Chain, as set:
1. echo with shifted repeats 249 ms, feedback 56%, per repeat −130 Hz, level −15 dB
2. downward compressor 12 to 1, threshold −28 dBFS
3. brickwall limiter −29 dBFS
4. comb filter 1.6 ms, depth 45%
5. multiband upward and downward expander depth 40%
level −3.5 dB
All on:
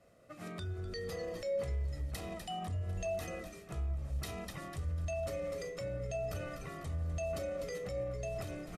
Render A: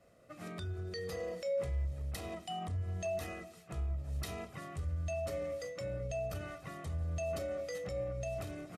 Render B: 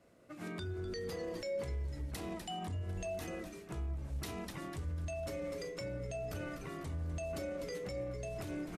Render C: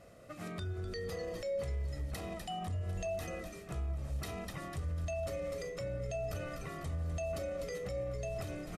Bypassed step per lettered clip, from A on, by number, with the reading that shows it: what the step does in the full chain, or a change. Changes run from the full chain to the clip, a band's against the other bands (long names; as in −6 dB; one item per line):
1, change in momentary loudness spread +1 LU
4, 250 Hz band +4.5 dB
5, change in crest factor −2.0 dB